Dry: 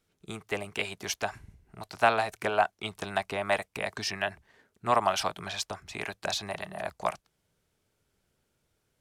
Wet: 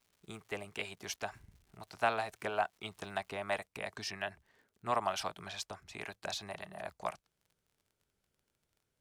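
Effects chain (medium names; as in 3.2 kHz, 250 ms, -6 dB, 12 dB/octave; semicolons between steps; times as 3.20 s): crackle 270 per s -49 dBFS, from 3.44 s 27 per s; trim -8 dB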